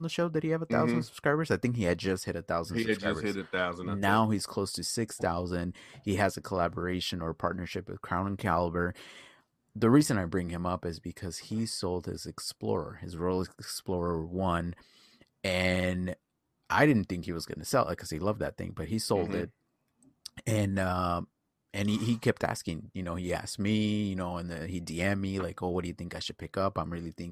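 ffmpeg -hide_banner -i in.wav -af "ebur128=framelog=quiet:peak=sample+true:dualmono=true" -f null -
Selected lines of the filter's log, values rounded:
Integrated loudness:
  I:         -28.4 LUFS
  Threshold: -38.7 LUFS
Loudness range:
  LRA:         3.8 LU
  Threshold: -48.8 LUFS
  LRA low:   -31.0 LUFS
  LRA high:  -27.2 LUFS
Sample peak:
  Peak:       -9.8 dBFS
True peak:
  Peak:       -9.8 dBFS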